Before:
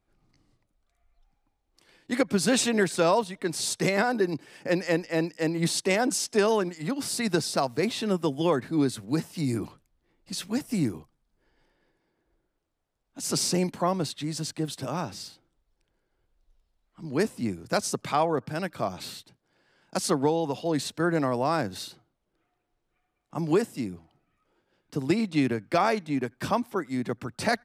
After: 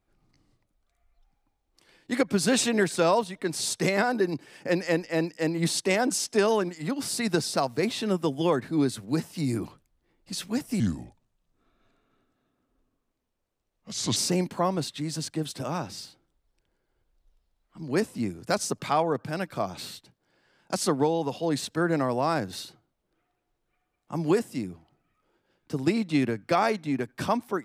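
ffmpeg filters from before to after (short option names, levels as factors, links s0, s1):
-filter_complex "[0:a]asplit=3[s0][s1][s2];[s0]atrim=end=10.804[s3];[s1]atrim=start=10.8:end=13.39,asetpts=PTS-STARTPTS,asetrate=33957,aresample=44100,atrim=end_sample=148336,asetpts=PTS-STARTPTS[s4];[s2]atrim=start=13.386[s5];[s3][s4]acrossfade=d=0.004:c1=hsin:c2=hsin[s6];[s6][s5]acrossfade=d=0.004:c1=hsin:c2=hsin"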